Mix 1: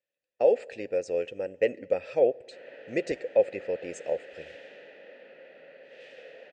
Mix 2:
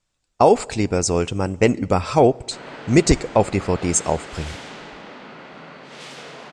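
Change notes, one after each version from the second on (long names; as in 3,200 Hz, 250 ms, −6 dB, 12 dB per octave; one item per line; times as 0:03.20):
master: remove formant filter e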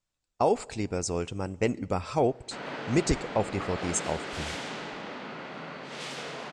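speech −10.5 dB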